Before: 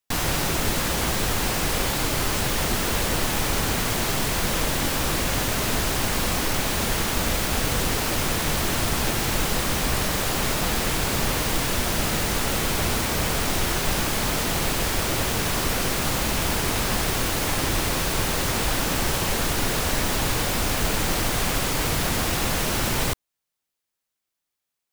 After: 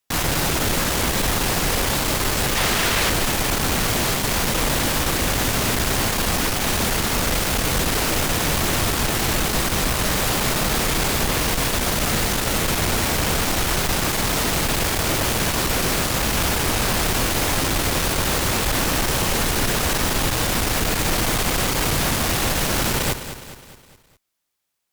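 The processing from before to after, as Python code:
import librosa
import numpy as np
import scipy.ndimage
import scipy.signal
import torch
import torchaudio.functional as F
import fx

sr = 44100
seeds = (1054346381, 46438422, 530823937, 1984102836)

y = fx.peak_eq(x, sr, hz=2200.0, db=7.0, octaves=2.8, at=(2.55, 3.1))
y = fx.tube_stage(y, sr, drive_db=24.0, bias=0.5)
y = fx.echo_feedback(y, sr, ms=207, feedback_pct=51, wet_db=-11.5)
y = y * 10.0 ** (7.5 / 20.0)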